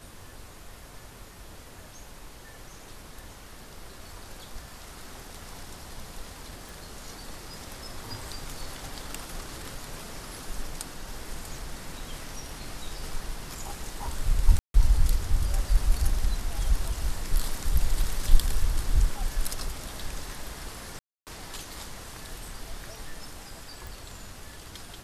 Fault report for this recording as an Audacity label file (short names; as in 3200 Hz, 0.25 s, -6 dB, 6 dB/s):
6.690000	6.690000	pop
14.590000	14.740000	gap 0.152 s
20.990000	21.270000	gap 0.278 s
23.870000	23.870000	pop